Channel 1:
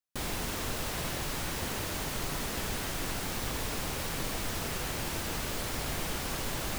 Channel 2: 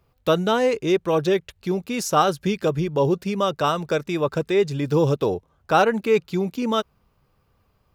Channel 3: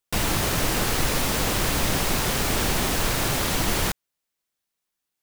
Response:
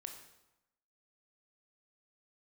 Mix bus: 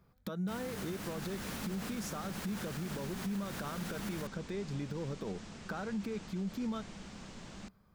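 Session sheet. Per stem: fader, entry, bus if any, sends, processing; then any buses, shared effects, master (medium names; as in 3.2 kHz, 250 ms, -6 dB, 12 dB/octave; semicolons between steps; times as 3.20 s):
-16.0 dB, 0.90 s, no bus, no send, steep low-pass 7.9 kHz 36 dB/octave
-5.0 dB, 0.00 s, bus A, no send, band-stop 2.8 kHz, Q 5.9; compression 4:1, threshold -31 dBFS, peak gain reduction 15.5 dB
-17.5 dB, 0.35 s, bus A, no send, high-pass 49 Hz
bus A: 0.0 dB, peaking EQ 1.5 kHz +5 dB 0.58 oct; compression, threshold -37 dBFS, peak gain reduction 7.5 dB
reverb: none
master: peaking EQ 200 Hz +14.5 dB 0.49 oct; peak limiter -30 dBFS, peak gain reduction 8.5 dB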